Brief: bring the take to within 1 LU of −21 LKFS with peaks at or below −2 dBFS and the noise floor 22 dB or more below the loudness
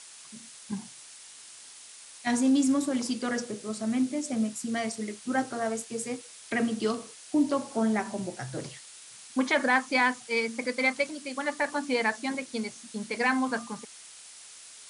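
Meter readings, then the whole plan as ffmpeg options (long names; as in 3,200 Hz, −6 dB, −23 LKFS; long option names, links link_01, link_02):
background noise floor −49 dBFS; target noise floor −51 dBFS; integrated loudness −29.0 LKFS; sample peak −11.5 dBFS; target loudness −21.0 LKFS
→ -af "afftdn=noise_reduction=6:noise_floor=-49"
-af "volume=8dB"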